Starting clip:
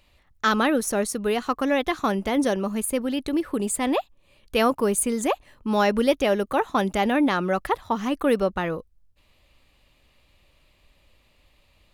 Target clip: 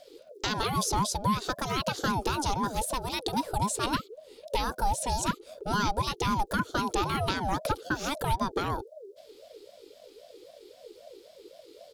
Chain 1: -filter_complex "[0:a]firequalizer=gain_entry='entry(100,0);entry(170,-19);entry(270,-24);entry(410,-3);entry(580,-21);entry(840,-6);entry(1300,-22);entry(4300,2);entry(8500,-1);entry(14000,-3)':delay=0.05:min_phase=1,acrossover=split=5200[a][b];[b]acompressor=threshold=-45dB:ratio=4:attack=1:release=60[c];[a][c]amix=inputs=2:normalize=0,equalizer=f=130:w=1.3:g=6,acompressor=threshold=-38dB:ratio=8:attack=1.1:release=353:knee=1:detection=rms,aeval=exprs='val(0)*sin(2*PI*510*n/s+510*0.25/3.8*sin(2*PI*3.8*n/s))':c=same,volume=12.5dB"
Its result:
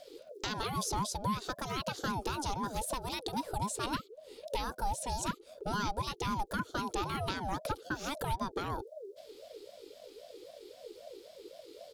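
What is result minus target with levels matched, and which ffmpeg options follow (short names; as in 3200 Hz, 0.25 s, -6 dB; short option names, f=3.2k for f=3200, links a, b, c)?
compressor: peak gain reduction +6.5 dB
-filter_complex "[0:a]firequalizer=gain_entry='entry(100,0);entry(170,-19);entry(270,-24);entry(410,-3);entry(580,-21);entry(840,-6);entry(1300,-22);entry(4300,2);entry(8500,-1);entry(14000,-3)':delay=0.05:min_phase=1,acrossover=split=5200[a][b];[b]acompressor=threshold=-45dB:ratio=4:attack=1:release=60[c];[a][c]amix=inputs=2:normalize=0,equalizer=f=130:w=1.3:g=6,acompressor=threshold=-30.5dB:ratio=8:attack=1.1:release=353:knee=1:detection=rms,aeval=exprs='val(0)*sin(2*PI*510*n/s+510*0.25/3.8*sin(2*PI*3.8*n/s))':c=same,volume=12.5dB"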